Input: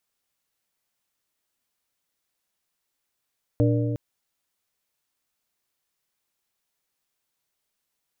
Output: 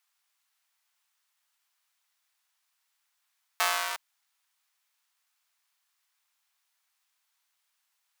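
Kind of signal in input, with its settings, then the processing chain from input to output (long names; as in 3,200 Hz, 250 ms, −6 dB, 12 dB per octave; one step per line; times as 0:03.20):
struck metal plate, length 0.36 s, lowest mode 118 Hz, modes 4, decay 2.61 s, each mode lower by 3 dB, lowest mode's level −18 dB
each half-wave held at its own peak
high-pass filter 860 Hz 24 dB per octave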